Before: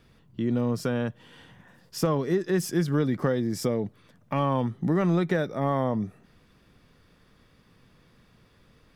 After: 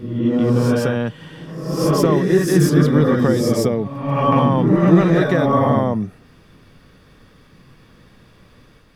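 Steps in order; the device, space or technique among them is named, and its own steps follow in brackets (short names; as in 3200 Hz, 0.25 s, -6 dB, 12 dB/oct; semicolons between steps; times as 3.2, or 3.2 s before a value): reverse reverb (reverse; reverb RT60 1.0 s, pre-delay 0.12 s, DRR -1 dB; reverse); gain +6.5 dB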